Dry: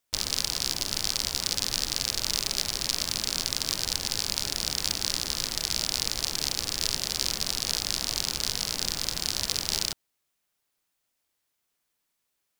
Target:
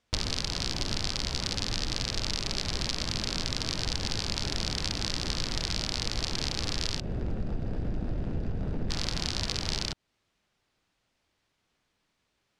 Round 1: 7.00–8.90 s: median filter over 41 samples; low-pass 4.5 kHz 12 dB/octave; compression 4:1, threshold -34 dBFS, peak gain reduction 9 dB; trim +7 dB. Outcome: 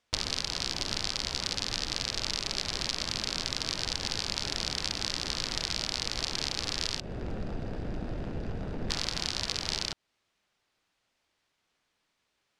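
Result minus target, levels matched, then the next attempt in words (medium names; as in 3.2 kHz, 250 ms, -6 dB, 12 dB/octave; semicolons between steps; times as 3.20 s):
250 Hz band -3.5 dB
7.00–8.90 s: median filter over 41 samples; low-pass 4.5 kHz 12 dB/octave; bass shelf 310 Hz +9 dB; compression 4:1, threshold -34 dBFS, peak gain reduction 9.5 dB; trim +7 dB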